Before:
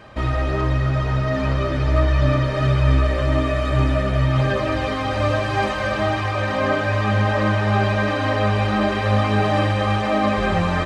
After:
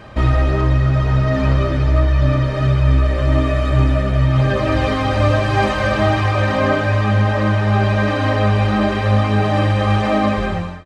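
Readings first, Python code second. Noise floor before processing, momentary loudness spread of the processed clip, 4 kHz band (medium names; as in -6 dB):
-23 dBFS, 2 LU, +1.5 dB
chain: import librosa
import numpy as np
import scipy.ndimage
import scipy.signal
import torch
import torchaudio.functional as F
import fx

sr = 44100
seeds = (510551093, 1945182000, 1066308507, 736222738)

y = fx.fade_out_tail(x, sr, length_s=0.79)
y = fx.low_shelf(y, sr, hz=260.0, db=5.0)
y = fx.rider(y, sr, range_db=3, speed_s=0.5)
y = y * librosa.db_to_amplitude(1.0)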